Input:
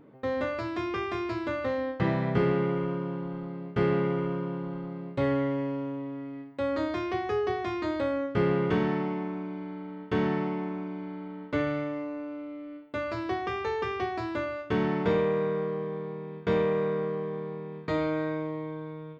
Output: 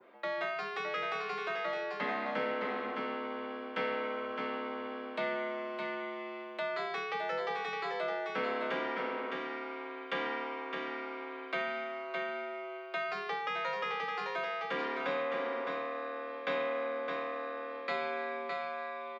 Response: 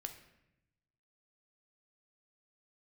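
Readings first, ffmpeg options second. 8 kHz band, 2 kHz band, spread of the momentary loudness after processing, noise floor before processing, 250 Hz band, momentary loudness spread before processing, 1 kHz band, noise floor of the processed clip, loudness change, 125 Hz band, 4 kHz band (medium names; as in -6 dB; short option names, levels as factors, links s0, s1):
no reading, +1.5 dB, 5 LU, -42 dBFS, -14.5 dB, 11 LU, -1.0 dB, -43 dBFS, -6.0 dB, -26.0 dB, +1.5 dB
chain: -filter_complex "[0:a]crystalizer=i=7:c=0,afreqshift=82,acrossover=split=550 3600:gain=0.2 1 0.0708[s0][s1][s2];[s0][s1][s2]amix=inputs=3:normalize=0,asplit=2[s3][s4];[s4]aecho=0:1:612:0.562[s5];[s3][s5]amix=inputs=2:normalize=0,acrossover=split=200[s6][s7];[s7]acompressor=threshold=0.00891:ratio=1.5[s8];[s6][s8]amix=inputs=2:normalize=0,adynamicequalizer=threshold=0.00501:dfrequency=3000:dqfactor=1:tfrequency=3000:tqfactor=1:attack=5:release=100:ratio=0.375:range=1.5:mode=cutabove:tftype=bell"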